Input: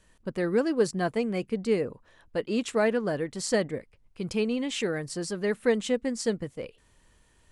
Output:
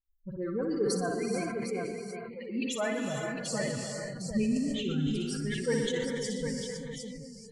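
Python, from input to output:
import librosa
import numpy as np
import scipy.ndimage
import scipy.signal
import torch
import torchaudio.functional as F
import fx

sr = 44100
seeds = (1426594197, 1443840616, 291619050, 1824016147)

p1 = fx.bin_expand(x, sr, power=3.0)
p2 = fx.dispersion(p1, sr, late='highs', ms=49.0, hz=2000.0)
p3 = fx.tilt_eq(p2, sr, slope=-4.5, at=(4.33, 5.25))
p4 = fx.over_compress(p3, sr, threshold_db=-44.0, ratio=-1.0)
p5 = p3 + (p4 * 10.0 ** (-2.0 / 20.0))
p6 = fx.bandpass_edges(p5, sr, low_hz=490.0, high_hz=6100.0, at=(1.55, 2.42))
p7 = p6 + fx.echo_multitap(p6, sr, ms=(59, 119, 146, 514, 755), db=(-6.5, -12.0, -19.0, -16.0, -6.5), dry=0)
p8 = fx.rev_gated(p7, sr, seeds[0], gate_ms=470, shape='rising', drr_db=3.0)
p9 = fx.quant_dither(p8, sr, seeds[1], bits=12, dither='none', at=(2.93, 3.34))
p10 = fx.sustainer(p9, sr, db_per_s=30.0)
y = p10 * 10.0 ** (-4.0 / 20.0)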